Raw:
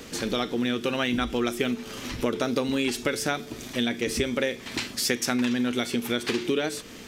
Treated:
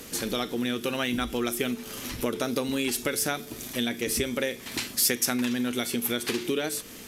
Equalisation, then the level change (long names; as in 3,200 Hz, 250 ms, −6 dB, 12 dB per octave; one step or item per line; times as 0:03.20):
parametric band 12,000 Hz +15 dB 0.88 octaves
−2.5 dB